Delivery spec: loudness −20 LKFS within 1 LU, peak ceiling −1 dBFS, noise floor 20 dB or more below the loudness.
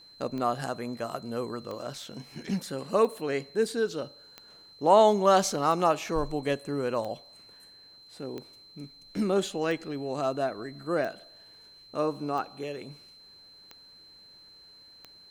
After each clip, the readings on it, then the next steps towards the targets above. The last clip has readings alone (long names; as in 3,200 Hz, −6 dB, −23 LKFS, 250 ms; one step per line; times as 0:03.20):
number of clicks 12; interfering tone 4,100 Hz; level of the tone −51 dBFS; integrated loudness −28.5 LKFS; sample peak −7.5 dBFS; target loudness −20.0 LKFS
→ click removal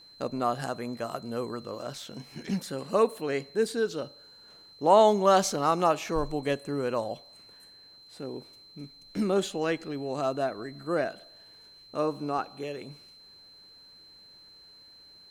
number of clicks 0; interfering tone 4,100 Hz; level of the tone −51 dBFS
→ notch filter 4,100 Hz, Q 30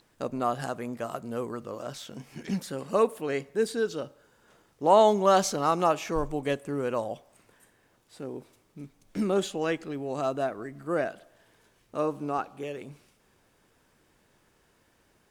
interfering tone none found; integrated loudness −28.5 LKFS; sample peak −8.0 dBFS; target loudness −20.0 LKFS
→ level +8.5 dB
brickwall limiter −1 dBFS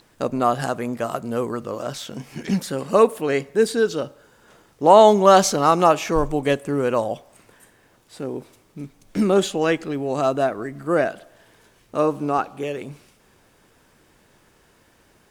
integrated loudness −20.5 LKFS; sample peak −1.0 dBFS; background noise floor −58 dBFS